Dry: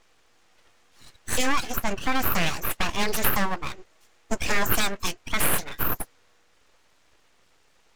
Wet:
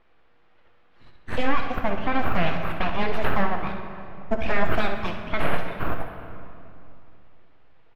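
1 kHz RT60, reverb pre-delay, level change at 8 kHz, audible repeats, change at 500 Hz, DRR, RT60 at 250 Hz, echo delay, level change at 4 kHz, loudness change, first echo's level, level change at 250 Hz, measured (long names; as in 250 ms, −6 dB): 2.8 s, 9 ms, below −25 dB, 1, +4.5 dB, 4.0 dB, 3.0 s, 65 ms, −7.0 dB, −1.5 dB, −10.5 dB, +2.0 dB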